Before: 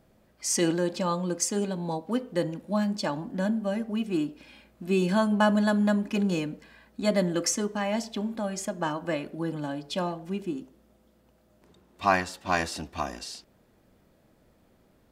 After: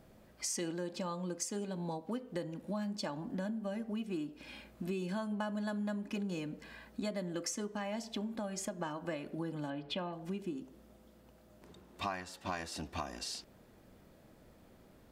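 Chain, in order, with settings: 9.7–10.13 resonant high shelf 4300 Hz -13.5 dB, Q 1.5; compressor 5:1, threshold -39 dBFS, peak gain reduction 20 dB; gain +2 dB

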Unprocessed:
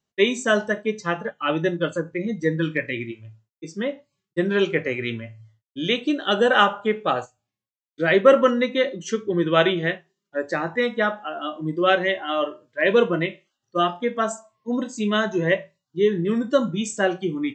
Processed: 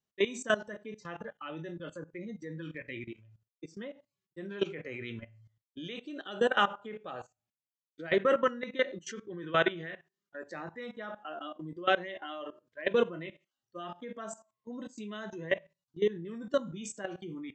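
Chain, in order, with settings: 8.18–10.48 bell 1600 Hz +6 dB 0.8 oct; level quantiser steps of 17 dB; gain -6.5 dB

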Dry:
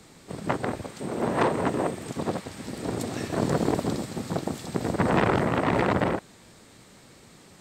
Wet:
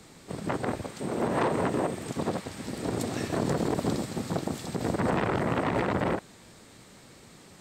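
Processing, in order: limiter -17 dBFS, peak gain reduction 6.5 dB

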